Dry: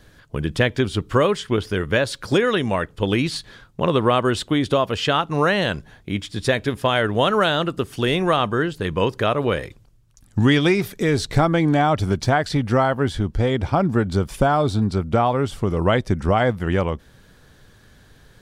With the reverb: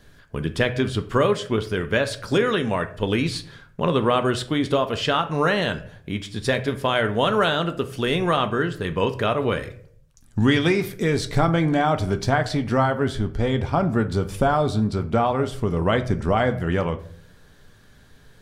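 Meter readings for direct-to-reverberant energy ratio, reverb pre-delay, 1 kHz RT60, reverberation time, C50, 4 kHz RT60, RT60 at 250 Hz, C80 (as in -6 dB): 7.5 dB, 4 ms, 0.45 s, 0.55 s, 14.5 dB, 0.35 s, 0.65 s, 18.0 dB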